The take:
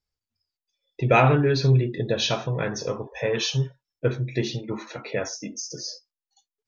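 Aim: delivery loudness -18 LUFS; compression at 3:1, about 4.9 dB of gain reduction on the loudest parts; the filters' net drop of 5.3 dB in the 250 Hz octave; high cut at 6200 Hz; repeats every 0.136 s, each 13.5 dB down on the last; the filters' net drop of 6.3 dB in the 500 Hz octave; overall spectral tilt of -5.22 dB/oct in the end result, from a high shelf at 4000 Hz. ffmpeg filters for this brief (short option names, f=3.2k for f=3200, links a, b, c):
-af "lowpass=6.2k,equalizer=f=250:t=o:g=-7.5,equalizer=f=500:t=o:g=-5.5,highshelf=f=4k:g=-6,acompressor=threshold=-22dB:ratio=3,aecho=1:1:136|272:0.211|0.0444,volume=12dB"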